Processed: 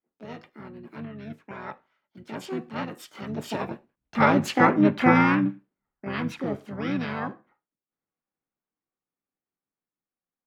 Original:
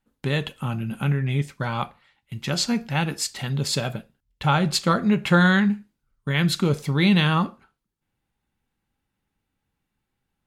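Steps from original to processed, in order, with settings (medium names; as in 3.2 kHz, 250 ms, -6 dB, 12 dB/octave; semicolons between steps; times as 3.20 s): Doppler pass-by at 4.54 s, 22 m/s, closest 15 m; harmony voices -7 st -2 dB, +7 st 0 dB; three-band isolator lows -18 dB, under 180 Hz, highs -17 dB, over 2.3 kHz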